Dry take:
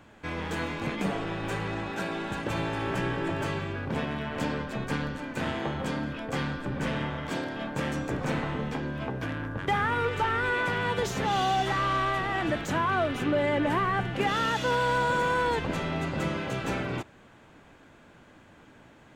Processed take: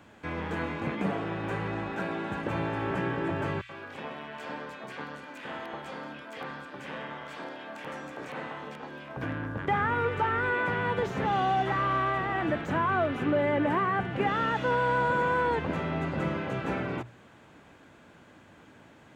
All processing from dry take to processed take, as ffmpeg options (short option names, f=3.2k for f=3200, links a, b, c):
-filter_complex "[0:a]asettb=1/sr,asplit=3[a][b][c];[a]atrim=end=3.614[d];[b]atrim=start=3.61:end=9.17,asetpts=PTS-STARTPTS,afade=t=in:d=0.004:c=qsin,afade=t=out:st=5.556:d=0.004:c=qsin,highpass=f=970:p=1,aeval=exprs='(mod(14.1*val(0)+1,2)-1)/14.1':c=same,acrossover=split=1800[e][f];[e]adelay=80[g];[g][f]amix=inputs=2:normalize=0,atrim=end_sample=245196[h];[c]atrim=start=9.166[i];[d][h]acrossfade=d=0.004:c1=hsin:c2=qsin[j];[j][i]acrossfade=d=0.004:c1=qsin:c2=hsin,highpass=58,acrossover=split=2600[k][l];[l]acompressor=threshold=-56dB:ratio=4:attack=1:release=60[m];[k][m]amix=inputs=2:normalize=0,bandreject=f=60:t=h:w=6,bandreject=f=120:t=h:w=6"